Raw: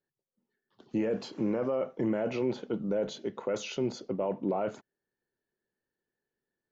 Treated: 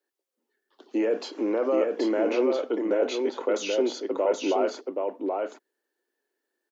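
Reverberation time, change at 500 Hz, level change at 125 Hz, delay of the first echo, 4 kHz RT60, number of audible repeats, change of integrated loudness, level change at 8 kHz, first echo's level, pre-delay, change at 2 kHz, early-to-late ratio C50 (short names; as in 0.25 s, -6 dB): none, +7.5 dB, under -15 dB, 0.776 s, none, 1, +6.0 dB, n/a, -3.5 dB, none, +7.5 dB, none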